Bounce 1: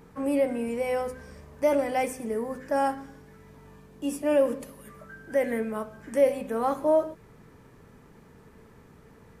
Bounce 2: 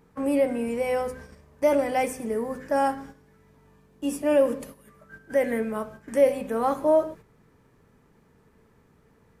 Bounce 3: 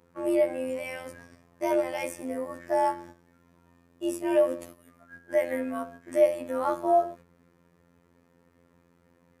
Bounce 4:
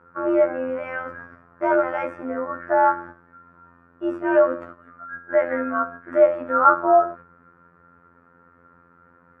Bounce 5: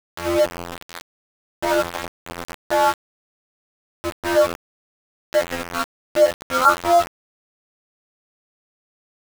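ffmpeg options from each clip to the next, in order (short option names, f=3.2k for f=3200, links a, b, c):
-af "agate=range=-9dB:threshold=-44dB:ratio=16:detection=peak,volume=2dB"
-af "afreqshift=50,afftfilt=real='hypot(re,im)*cos(PI*b)':imag='0':win_size=2048:overlap=0.75"
-af "lowpass=f=1.4k:t=q:w=11,volume=4dB"
-af "aeval=exprs='val(0)*gte(abs(val(0)),0.0944)':c=same"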